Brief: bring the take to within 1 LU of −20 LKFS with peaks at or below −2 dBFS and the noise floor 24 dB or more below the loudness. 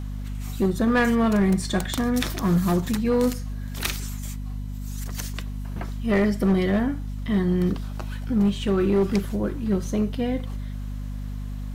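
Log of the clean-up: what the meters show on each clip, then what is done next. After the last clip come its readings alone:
share of clipped samples 1.7%; peaks flattened at −15.0 dBFS; mains hum 50 Hz; hum harmonics up to 250 Hz; level of the hum −29 dBFS; integrated loudness −25.0 LKFS; sample peak −15.0 dBFS; target loudness −20.0 LKFS
→ clipped peaks rebuilt −15 dBFS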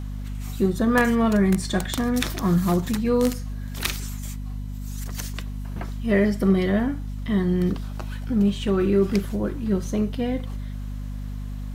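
share of clipped samples 0.0%; mains hum 50 Hz; hum harmonics up to 250 Hz; level of the hum −29 dBFS
→ mains-hum notches 50/100/150/200/250 Hz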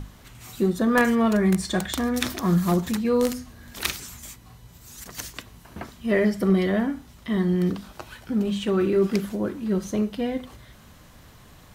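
mains hum none found; integrated loudness −24.0 LKFS; sample peak −5.0 dBFS; target loudness −20.0 LKFS
→ level +4 dB
brickwall limiter −2 dBFS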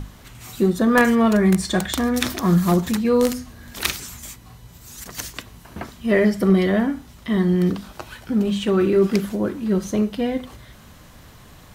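integrated loudness −20.0 LKFS; sample peak −2.0 dBFS; background noise floor −46 dBFS

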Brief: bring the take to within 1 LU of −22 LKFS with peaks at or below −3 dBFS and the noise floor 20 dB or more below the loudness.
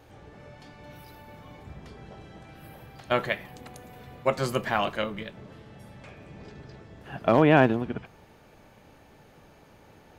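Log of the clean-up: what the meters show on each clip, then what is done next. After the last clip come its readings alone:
integrated loudness −25.5 LKFS; sample peak −8.5 dBFS; target loudness −22.0 LKFS
→ level +3.5 dB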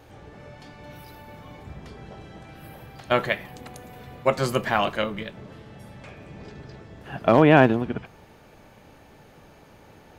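integrated loudness −22.0 LKFS; sample peak −5.0 dBFS; background noise floor −52 dBFS

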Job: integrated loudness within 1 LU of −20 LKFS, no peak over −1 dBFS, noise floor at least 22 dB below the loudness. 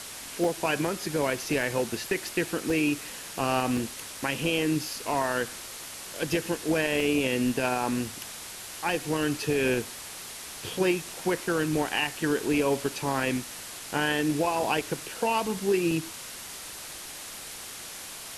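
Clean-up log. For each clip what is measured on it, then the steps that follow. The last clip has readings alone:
number of dropouts 7; longest dropout 2.7 ms; background noise floor −41 dBFS; target noise floor −51 dBFS; integrated loudness −29.0 LKFS; sample peak −12.5 dBFS; target loudness −20.0 LKFS
→ repair the gap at 0:00.44/0:01.63/0:02.70/0:03.77/0:07.00/0:08.89/0:15.91, 2.7 ms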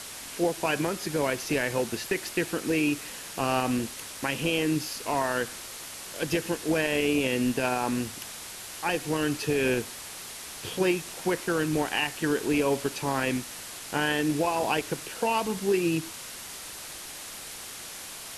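number of dropouts 0; background noise floor −41 dBFS; target noise floor −51 dBFS
→ noise reduction from a noise print 10 dB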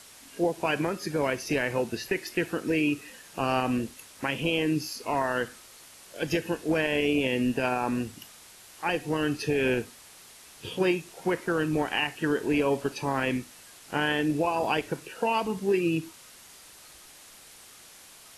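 background noise floor −51 dBFS; integrated loudness −28.5 LKFS; sample peak −13.0 dBFS; target loudness −20.0 LKFS
→ level +8.5 dB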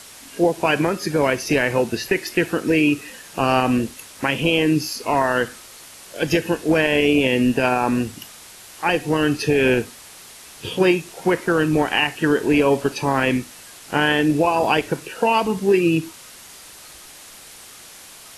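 integrated loudness −20.0 LKFS; sample peak −4.5 dBFS; background noise floor −43 dBFS

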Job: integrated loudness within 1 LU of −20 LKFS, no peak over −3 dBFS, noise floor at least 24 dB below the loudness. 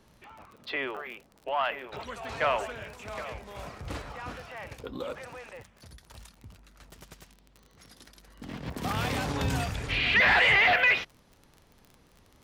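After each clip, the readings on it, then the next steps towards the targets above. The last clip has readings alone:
crackle rate 31 per second; integrated loudness −26.5 LKFS; sample peak −14.0 dBFS; target loudness −20.0 LKFS
→ click removal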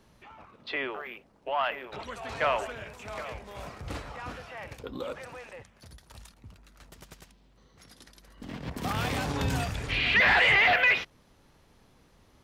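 crackle rate 0.080 per second; integrated loudness −26.5 LKFS; sample peak −14.0 dBFS; target loudness −20.0 LKFS
→ level +6.5 dB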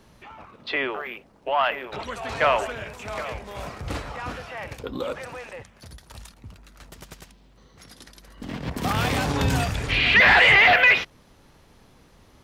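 integrated loudness −20.0 LKFS; sample peak −7.5 dBFS; background noise floor −55 dBFS

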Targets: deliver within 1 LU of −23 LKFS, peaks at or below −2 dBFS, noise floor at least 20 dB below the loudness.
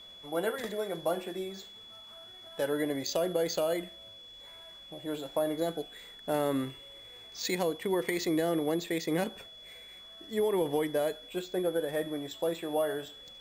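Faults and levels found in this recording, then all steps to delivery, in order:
interfering tone 3,400 Hz; level of the tone −48 dBFS; integrated loudness −32.5 LKFS; sample peak −15.5 dBFS; target loudness −23.0 LKFS
→ notch filter 3,400 Hz, Q 30
level +9.5 dB

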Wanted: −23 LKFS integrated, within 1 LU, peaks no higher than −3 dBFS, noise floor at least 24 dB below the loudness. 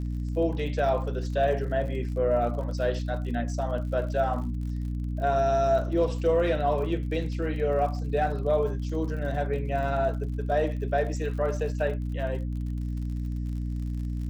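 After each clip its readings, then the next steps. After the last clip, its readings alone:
crackle rate 53 per second; mains hum 60 Hz; hum harmonics up to 300 Hz; level of the hum −28 dBFS; integrated loudness −28.0 LKFS; sample peak −13.5 dBFS; target loudness −23.0 LKFS
→ click removal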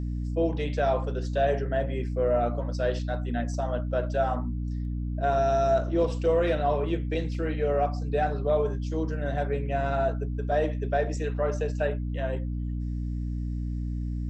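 crackle rate 0.070 per second; mains hum 60 Hz; hum harmonics up to 300 Hz; level of the hum −28 dBFS
→ hum removal 60 Hz, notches 5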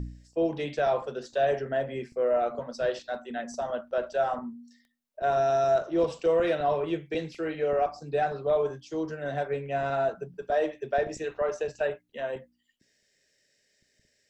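mains hum none found; integrated loudness −29.0 LKFS; sample peak −15.0 dBFS; target loudness −23.0 LKFS
→ level +6 dB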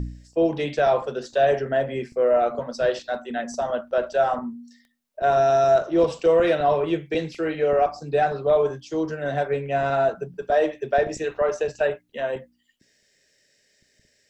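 integrated loudness −23.0 LKFS; sample peak −9.0 dBFS; background noise floor −66 dBFS

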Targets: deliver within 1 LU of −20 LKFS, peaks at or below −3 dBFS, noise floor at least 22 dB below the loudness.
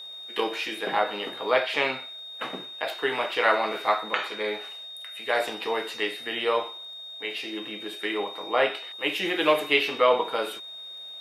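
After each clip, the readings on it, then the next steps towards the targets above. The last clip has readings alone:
crackle rate 18 per second; interfering tone 3,700 Hz; level of the tone −38 dBFS; integrated loudness −27.0 LKFS; sample peak −6.0 dBFS; target loudness −20.0 LKFS
→ click removal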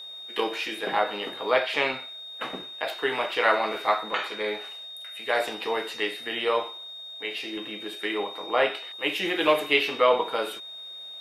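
crackle rate 0 per second; interfering tone 3,700 Hz; level of the tone −38 dBFS
→ notch filter 3,700 Hz, Q 30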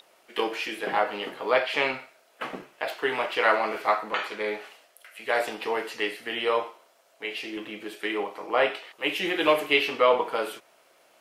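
interfering tone none found; integrated loudness −27.0 LKFS; sample peak −7.0 dBFS; target loudness −20.0 LKFS
→ level +7 dB
brickwall limiter −3 dBFS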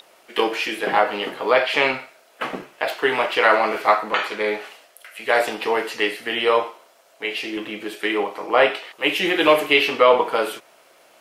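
integrated loudness −20.5 LKFS; sample peak −3.0 dBFS; background noise floor −55 dBFS

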